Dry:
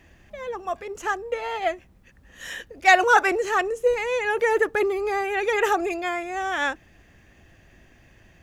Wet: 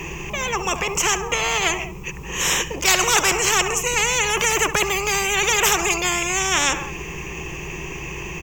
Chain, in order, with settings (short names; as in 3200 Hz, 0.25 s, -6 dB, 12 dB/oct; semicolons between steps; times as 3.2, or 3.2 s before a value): ripple EQ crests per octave 0.74, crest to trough 17 dB; feedback echo 68 ms, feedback 46%, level -21.5 dB; spectral compressor 4:1